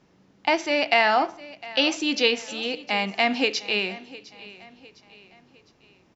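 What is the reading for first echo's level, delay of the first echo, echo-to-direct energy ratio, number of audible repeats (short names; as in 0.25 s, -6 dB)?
-19.0 dB, 0.707 s, -18.0 dB, 3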